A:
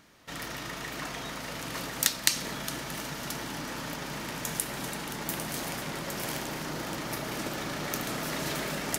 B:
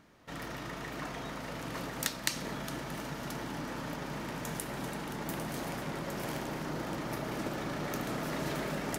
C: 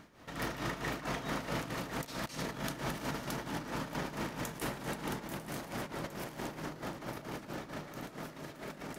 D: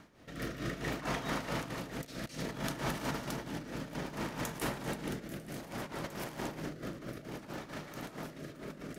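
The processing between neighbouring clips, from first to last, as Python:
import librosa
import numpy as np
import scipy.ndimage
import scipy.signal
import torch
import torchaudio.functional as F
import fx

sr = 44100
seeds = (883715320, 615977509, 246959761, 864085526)

y1 = fx.high_shelf(x, sr, hz=2000.0, db=-10.0)
y2 = fx.over_compress(y1, sr, threshold_db=-40.0, ratio=-0.5)
y2 = y2 * (1.0 - 0.68 / 2.0 + 0.68 / 2.0 * np.cos(2.0 * np.pi * 4.5 * (np.arange(len(y2)) / sr)))
y2 = y2 + 10.0 ** (-13.5 / 20.0) * np.pad(y2, (int(867 * sr / 1000.0), 0))[:len(y2)]
y2 = y2 * 10.0 ** (3.5 / 20.0)
y3 = fx.rotary(y2, sr, hz=0.6)
y3 = y3 * 10.0 ** (2.0 / 20.0)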